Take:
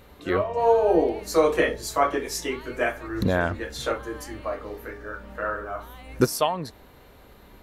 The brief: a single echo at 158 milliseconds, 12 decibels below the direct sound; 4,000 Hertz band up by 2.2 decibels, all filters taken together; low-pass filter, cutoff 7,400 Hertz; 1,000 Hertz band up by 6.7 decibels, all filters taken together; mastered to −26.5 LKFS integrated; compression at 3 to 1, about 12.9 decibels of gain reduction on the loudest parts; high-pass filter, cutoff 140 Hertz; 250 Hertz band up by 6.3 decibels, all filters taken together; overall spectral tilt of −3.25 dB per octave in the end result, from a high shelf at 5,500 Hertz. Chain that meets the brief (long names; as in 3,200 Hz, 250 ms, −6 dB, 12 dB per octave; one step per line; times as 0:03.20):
high-pass filter 140 Hz
low-pass filter 7,400 Hz
parametric band 250 Hz +8.5 dB
parametric band 1,000 Hz +8 dB
parametric band 4,000 Hz +4.5 dB
high-shelf EQ 5,500 Hz −4 dB
downward compressor 3 to 1, threshold −27 dBFS
single-tap delay 158 ms −12 dB
level +3.5 dB